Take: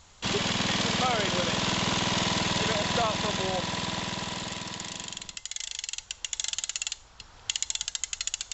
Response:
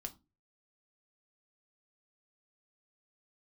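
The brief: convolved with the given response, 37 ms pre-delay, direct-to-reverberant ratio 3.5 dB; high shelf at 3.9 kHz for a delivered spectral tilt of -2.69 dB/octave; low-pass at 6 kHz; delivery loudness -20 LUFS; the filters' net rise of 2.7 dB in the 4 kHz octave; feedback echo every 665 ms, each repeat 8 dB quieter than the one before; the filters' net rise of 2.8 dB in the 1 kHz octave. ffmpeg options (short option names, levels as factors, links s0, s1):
-filter_complex "[0:a]lowpass=6000,equalizer=f=1000:t=o:g=3.5,highshelf=f=3900:g=-5.5,equalizer=f=4000:t=o:g=7,aecho=1:1:665|1330|1995|2660|3325:0.398|0.159|0.0637|0.0255|0.0102,asplit=2[s0][s1];[1:a]atrim=start_sample=2205,adelay=37[s2];[s1][s2]afir=irnorm=-1:irlink=0,volume=1[s3];[s0][s3]amix=inputs=2:normalize=0,volume=1.78"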